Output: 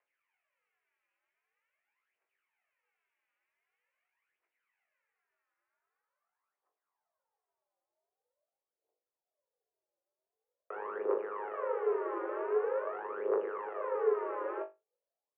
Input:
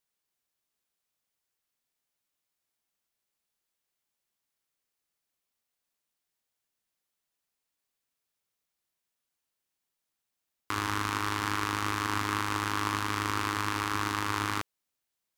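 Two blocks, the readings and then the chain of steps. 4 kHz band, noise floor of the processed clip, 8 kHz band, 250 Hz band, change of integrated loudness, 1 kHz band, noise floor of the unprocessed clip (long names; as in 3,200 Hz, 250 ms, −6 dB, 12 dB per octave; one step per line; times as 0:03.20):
below −35 dB, below −85 dBFS, below −35 dB, −10.5 dB, −4.5 dB, −9.0 dB, −85 dBFS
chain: phase shifter 0.45 Hz, delay 4.6 ms, feedback 76%
in parallel at −4 dB: gain into a clipping stage and back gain 24 dB
on the sum: single-sideband voice off tune +110 Hz 280–2,700 Hz
low-pass filter sweep 2,200 Hz → 540 Hz, 0:04.78–0:08.55
flutter between parallel walls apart 3.5 metres, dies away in 0.22 s
level −5.5 dB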